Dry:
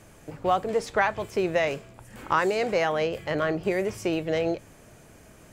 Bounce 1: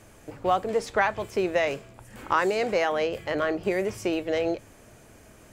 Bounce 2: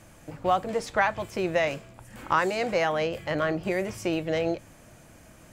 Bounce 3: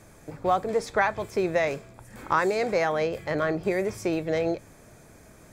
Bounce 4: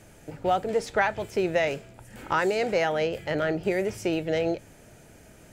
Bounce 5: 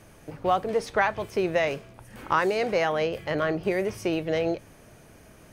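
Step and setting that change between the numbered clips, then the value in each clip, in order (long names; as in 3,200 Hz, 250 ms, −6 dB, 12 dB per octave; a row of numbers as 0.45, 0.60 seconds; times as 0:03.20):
notch filter, centre frequency: 160, 420, 2,900, 1,100, 7,400 Hertz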